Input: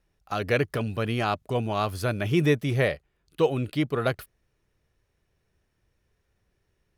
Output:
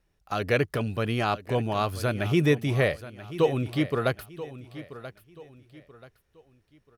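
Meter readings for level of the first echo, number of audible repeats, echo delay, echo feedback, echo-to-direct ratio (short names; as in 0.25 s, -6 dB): -15.0 dB, 3, 0.983 s, 34%, -14.5 dB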